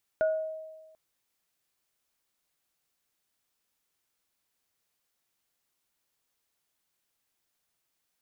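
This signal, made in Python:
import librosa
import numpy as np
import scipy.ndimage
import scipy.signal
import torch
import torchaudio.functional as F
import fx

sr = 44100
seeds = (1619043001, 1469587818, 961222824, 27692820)

y = fx.additive_free(sr, length_s=0.74, hz=633.0, level_db=-21.0, upper_db=(-10.5,), decay_s=1.31, upper_decays_s=(0.39,), upper_hz=(1450.0,))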